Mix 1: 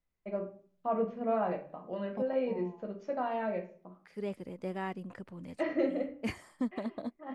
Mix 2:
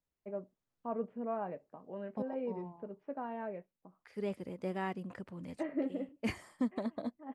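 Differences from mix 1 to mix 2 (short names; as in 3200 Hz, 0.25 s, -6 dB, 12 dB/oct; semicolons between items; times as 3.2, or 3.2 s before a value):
first voice: add air absorption 500 m; reverb: off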